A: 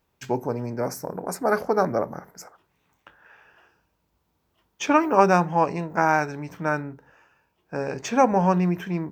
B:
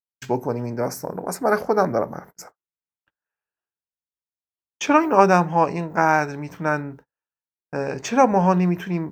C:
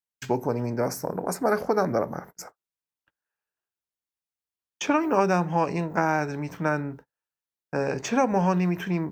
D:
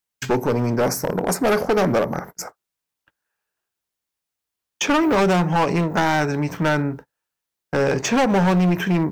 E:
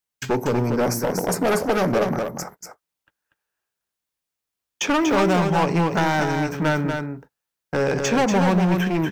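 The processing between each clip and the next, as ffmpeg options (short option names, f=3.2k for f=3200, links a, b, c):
-af "agate=range=-41dB:threshold=-45dB:ratio=16:detection=peak,volume=2.5dB"
-filter_complex "[0:a]acrossover=split=610|1400[a][b][c];[a]acompressor=threshold=-22dB:ratio=4[d];[b]acompressor=threshold=-30dB:ratio=4[e];[c]acompressor=threshold=-31dB:ratio=4[f];[d][e][f]amix=inputs=3:normalize=0"
-af "asoftclip=type=hard:threshold=-23.5dB,volume=9dB"
-af "aecho=1:1:239:0.531,volume=-2dB"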